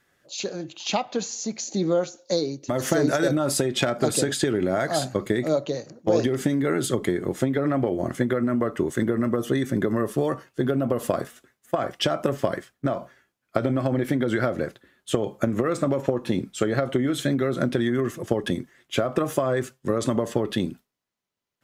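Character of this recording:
background noise floor −77 dBFS
spectral slope −5.0 dB per octave

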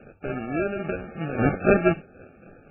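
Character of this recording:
aliases and images of a low sample rate 1,000 Hz, jitter 0%
tremolo triangle 3.7 Hz, depth 60%
MP3

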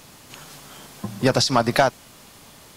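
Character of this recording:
background noise floor −48 dBFS
spectral slope −4.0 dB per octave

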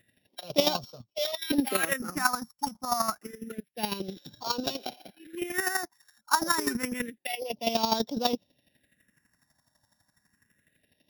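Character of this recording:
a buzz of ramps at a fixed pitch in blocks of 8 samples
chopped level 12 Hz, depth 65%, duty 20%
phaser sweep stages 4, 0.28 Hz, lowest notch 430–1,900 Hz

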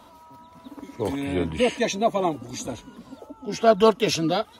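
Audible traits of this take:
background noise floor −51 dBFS
spectral slope −4.5 dB per octave

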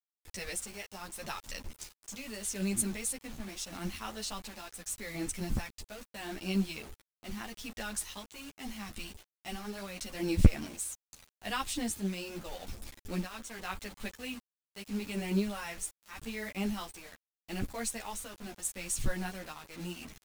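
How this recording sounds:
tremolo triangle 0.8 Hz, depth 65%
a quantiser's noise floor 8 bits, dither none
a shimmering, thickened sound

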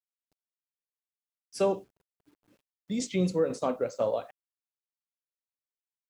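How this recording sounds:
tremolo saw down 2 Hz, depth 45%
a quantiser's noise floor 12 bits, dither none

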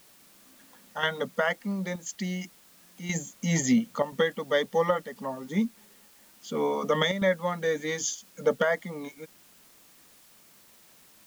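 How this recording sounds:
chopped level 0.97 Hz, depth 60%, duty 90%
a quantiser's noise floor 10 bits, dither triangular

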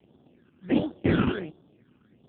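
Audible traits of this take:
aliases and images of a low sample rate 1,100 Hz, jitter 20%
phaser sweep stages 12, 1.4 Hz, lowest notch 610–2,200 Hz
AMR narrowband

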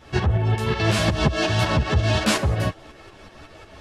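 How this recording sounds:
tremolo saw up 5.5 Hz, depth 60%
a shimmering, thickened sound

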